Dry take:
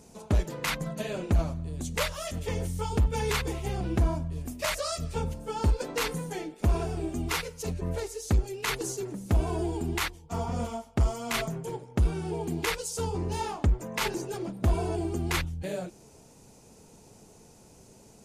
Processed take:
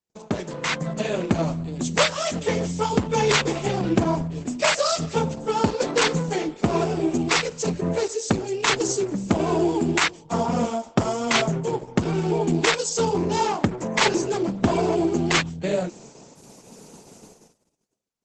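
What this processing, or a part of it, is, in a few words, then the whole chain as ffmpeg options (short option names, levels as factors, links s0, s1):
video call: -filter_complex "[0:a]asplit=3[s0][s1][s2];[s0]afade=t=out:st=7.49:d=0.02[s3];[s1]highpass=f=43:w=0.5412,highpass=f=43:w=1.3066,afade=t=in:st=7.49:d=0.02,afade=t=out:st=8.83:d=0.02[s4];[s2]afade=t=in:st=8.83:d=0.02[s5];[s3][s4][s5]amix=inputs=3:normalize=0,highpass=f=140:w=0.5412,highpass=f=140:w=1.3066,dynaudnorm=f=160:g=13:m=2,agate=range=0.00398:threshold=0.00355:ratio=16:detection=peak,volume=1.78" -ar 48000 -c:a libopus -b:a 12k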